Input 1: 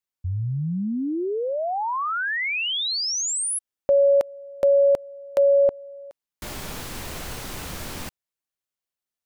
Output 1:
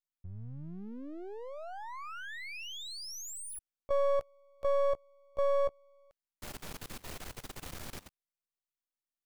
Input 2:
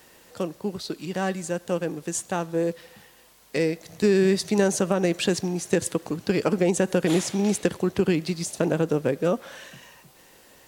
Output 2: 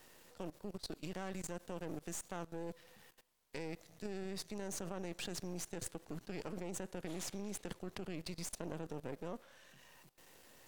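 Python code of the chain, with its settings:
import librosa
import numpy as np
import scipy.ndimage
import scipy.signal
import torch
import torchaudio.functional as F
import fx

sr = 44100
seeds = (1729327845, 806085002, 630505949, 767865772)

y = np.where(x < 0.0, 10.0 ** (-12.0 / 20.0) * x, x)
y = fx.level_steps(y, sr, step_db=19)
y = F.gain(torch.from_numpy(y), -4.5).numpy()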